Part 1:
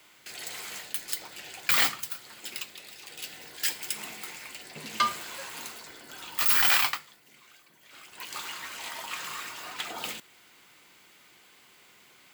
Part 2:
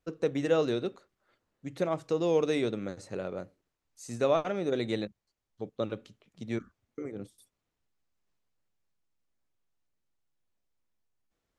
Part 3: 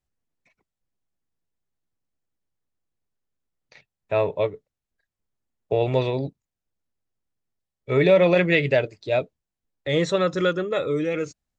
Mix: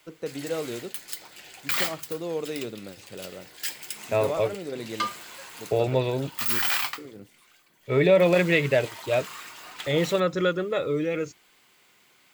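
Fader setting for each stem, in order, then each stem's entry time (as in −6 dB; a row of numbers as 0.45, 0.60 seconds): −3.0, −4.5, −2.0 decibels; 0.00, 0.00, 0.00 seconds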